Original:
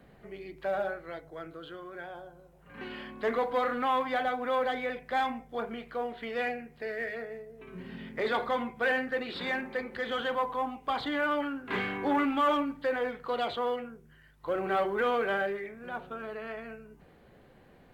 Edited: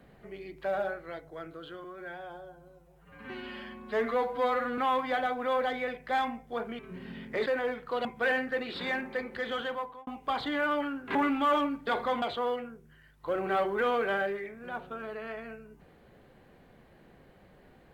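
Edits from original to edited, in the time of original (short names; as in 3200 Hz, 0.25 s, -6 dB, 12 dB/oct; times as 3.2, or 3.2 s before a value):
1.84–3.8 stretch 1.5×
5.81–7.63 cut
8.3–8.65 swap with 12.83–13.42
9.9–10.67 fade out equal-power
11.75–12.11 cut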